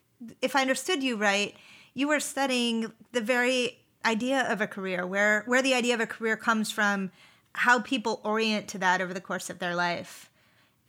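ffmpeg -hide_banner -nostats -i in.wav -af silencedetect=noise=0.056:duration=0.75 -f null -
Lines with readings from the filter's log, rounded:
silence_start: 9.98
silence_end: 10.88 | silence_duration: 0.90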